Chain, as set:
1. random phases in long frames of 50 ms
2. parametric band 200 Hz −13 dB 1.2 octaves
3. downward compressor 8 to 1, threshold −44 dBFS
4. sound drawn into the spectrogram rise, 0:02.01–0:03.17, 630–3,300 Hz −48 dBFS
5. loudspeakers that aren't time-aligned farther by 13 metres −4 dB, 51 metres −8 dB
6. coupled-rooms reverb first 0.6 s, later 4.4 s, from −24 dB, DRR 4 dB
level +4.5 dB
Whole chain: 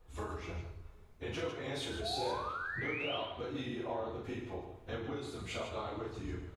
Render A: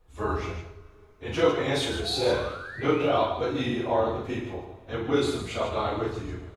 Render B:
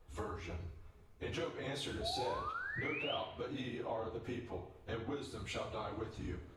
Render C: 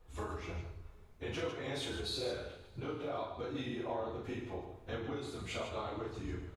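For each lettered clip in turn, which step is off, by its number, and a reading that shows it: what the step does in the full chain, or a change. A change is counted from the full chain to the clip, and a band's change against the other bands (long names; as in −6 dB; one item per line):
3, average gain reduction 10.0 dB
5, echo-to-direct ratio 0.5 dB to −4.0 dB
4, 2 kHz band −5.0 dB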